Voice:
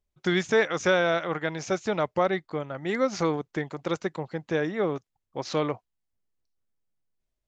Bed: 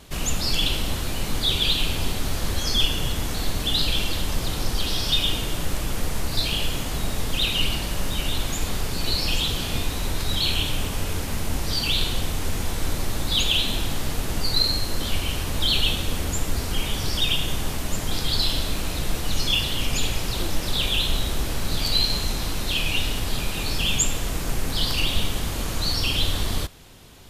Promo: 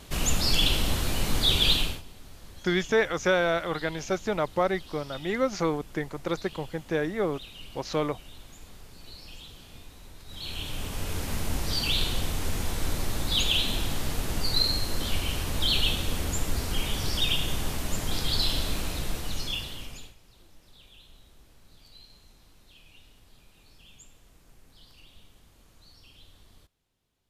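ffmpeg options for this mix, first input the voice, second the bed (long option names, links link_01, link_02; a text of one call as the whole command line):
ffmpeg -i stem1.wav -i stem2.wav -filter_complex "[0:a]adelay=2400,volume=-1dB[link_01];[1:a]volume=18dB,afade=type=out:start_time=1.73:duration=0.29:silence=0.0841395,afade=type=in:start_time=10.26:duration=1.05:silence=0.11885,afade=type=out:start_time=18.75:duration=1.4:silence=0.0421697[link_02];[link_01][link_02]amix=inputs=2:normalize=0" out.wav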